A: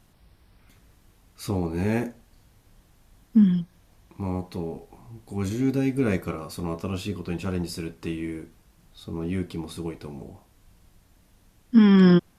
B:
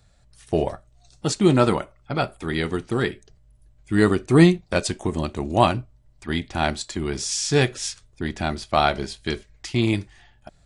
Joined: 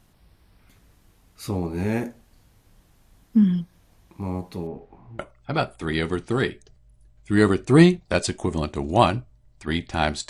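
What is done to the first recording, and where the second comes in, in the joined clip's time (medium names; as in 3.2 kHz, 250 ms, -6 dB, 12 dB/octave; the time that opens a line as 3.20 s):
A
4.67–5.19 s: low-pass 2.1 kHz 12 dB/octave
5.19 s: go over to B from 1.80 s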